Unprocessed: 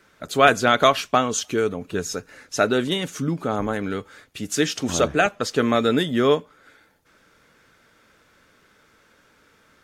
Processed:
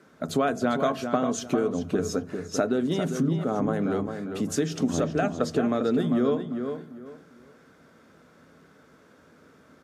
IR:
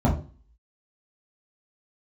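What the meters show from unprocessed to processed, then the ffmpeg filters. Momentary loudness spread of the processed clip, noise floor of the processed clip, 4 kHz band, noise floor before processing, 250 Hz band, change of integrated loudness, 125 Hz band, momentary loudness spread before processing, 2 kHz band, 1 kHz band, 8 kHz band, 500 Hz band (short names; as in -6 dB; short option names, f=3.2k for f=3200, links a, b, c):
7 LU, -57 dBFS, -12.5 dB, -59 dBFS, 0.0 dB, -5.0 dB, -1.0 dB, 13 LU, -12.5 dB, -9.0 dB, -8.0 dB, -4.5 dB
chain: -filter_complex "[0:a]equalizer=f=2.5k:w=0.69:g=-9,bandreject=f=870:w=19,asplit=2[a][b];[1:a]atrim=start_sample=2205,asetrate=48510,aresample=44100[c];[b][c]afir=irnorm=-1:irlink=0,volume=-30dB[d];[a][d]amix=inputs=2:normalize=0,acompressor=threshold=-26dB:ratio=6,aresample=32000,aresample=44100,highpass=120,aemphasis=mode=reproduction:type=cd,asplit=2[e][f];[f]adelay=399,lowpass=f=3.1k:p=1,volume=-7dB,asplit=2[g][h];[h]adelay=399,lowpass=f=3.1k:p=1,volume=0.26,asplit=2[i][j];[j]adelay=399,lowpass=f=3.1k:p=1,volume=0.26[k];[e][g][i][k]amix=inputs=4:normalize=0,volume=4dB"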